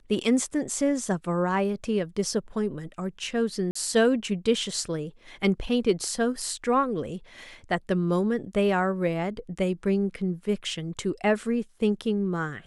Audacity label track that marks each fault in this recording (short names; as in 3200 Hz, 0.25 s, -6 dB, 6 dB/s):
3.710000	3.750000	gap 44 ms